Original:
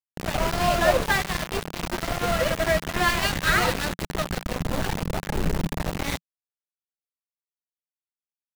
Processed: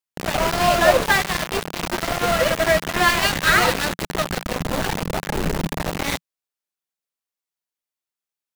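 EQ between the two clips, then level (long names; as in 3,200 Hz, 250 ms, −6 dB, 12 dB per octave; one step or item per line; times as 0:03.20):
low-shelf EQ 160 Hz −7.5 dB
+5.5 dB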